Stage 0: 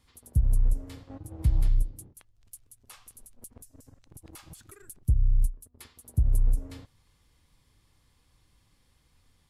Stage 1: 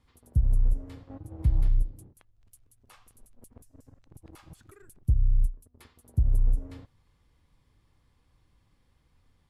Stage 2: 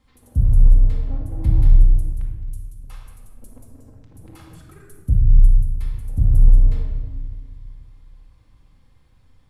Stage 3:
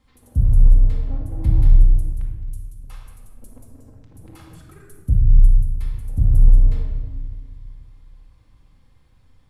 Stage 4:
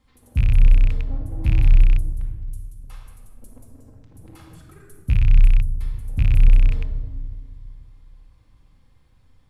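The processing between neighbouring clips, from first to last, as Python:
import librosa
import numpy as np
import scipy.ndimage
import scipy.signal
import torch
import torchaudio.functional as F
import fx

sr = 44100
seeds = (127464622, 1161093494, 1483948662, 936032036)

y1 = fx.high_shelf(x, sr, hz=3100.0, db=-11.5)
y2 = fx.room_shoebox(y1, sr, seeds[0], volume_m3=1500.0, walls='mixed', distance_m=2.1)
y2 = y2 * 10.0 ** (3.5 / 20.0)
y3 = y2
y4 = fx.rattle_buzz(y3, sr, strikes_db=-15.0, level_db=-21.0)
y4 = y4 * 10.0 ** (-1.5 / 20.0)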